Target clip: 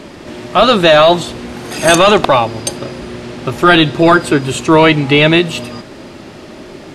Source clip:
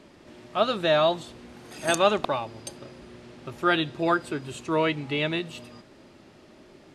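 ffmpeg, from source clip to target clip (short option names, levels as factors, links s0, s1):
-af "apsyclip=11.9,volume=0.794"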